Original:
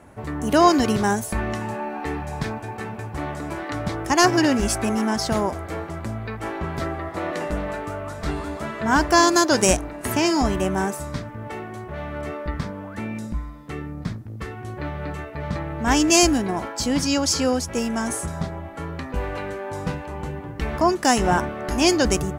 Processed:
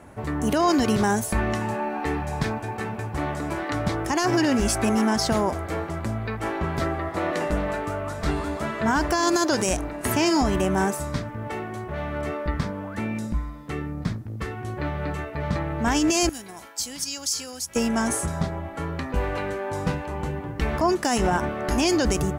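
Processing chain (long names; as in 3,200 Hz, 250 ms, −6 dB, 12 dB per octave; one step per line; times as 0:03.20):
brickwall limiter −14.5 dBFS, peak gain reduction 11.5 dB
0:16.29–0:17.76: first-order pre-emphasis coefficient 0.9
level +1.5 dB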